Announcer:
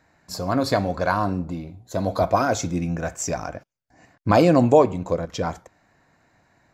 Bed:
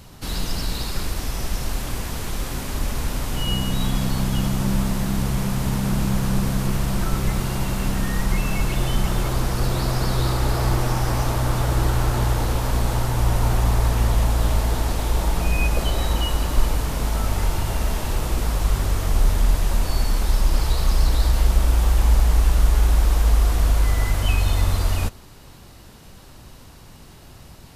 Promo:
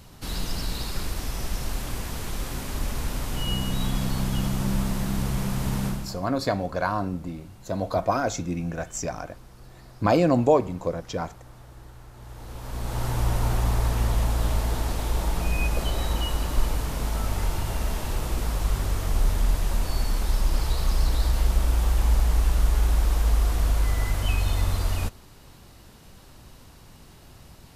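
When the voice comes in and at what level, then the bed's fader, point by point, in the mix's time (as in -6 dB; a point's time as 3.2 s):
5.75 s, -4.0 dB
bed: 5.86 s -4 dB
6.3 s -26 dB
12.12 s -26 dB
13.07 s -4.5 dB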